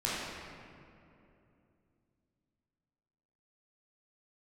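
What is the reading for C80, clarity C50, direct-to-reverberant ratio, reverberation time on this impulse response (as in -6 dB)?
-0.5 dB, -3.0 dB, -8.5 dB, 2.8 s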